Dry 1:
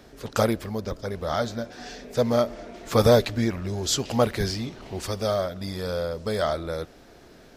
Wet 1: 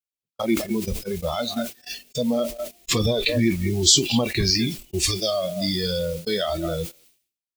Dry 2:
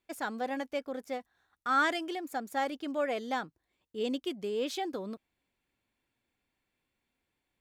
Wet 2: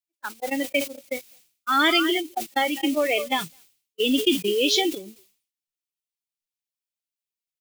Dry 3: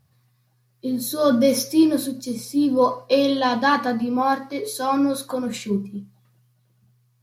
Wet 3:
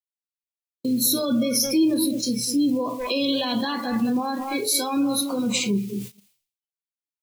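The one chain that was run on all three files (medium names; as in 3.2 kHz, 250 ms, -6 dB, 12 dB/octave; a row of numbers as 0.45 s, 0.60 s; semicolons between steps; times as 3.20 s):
speakerphone echo 210 ms, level -9 dB; added noise white -41 dBFS; in parallel at +2 dB: compression 6:1, threshold -29 dBFS; on the sum: word length cut 6-bit, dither none; peak limiter -13 dBFS; spectral noise reduction 18 dB; FFT filter 220 Hz 0 dB, 350 Hz -7 dB, 610 Hz -5 dB, 1.6 kHz -6 dB, 2.4 kHz +6 dB; gate -33 dBFS, range -55 dB; peaking EQ 340 Hz +8.5 dB 0.45 oct; decay stretcher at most 120 dB/s; normalise loudness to -23 LUFS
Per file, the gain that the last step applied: +3.0 dB, +7.0 dB, -1.5 dB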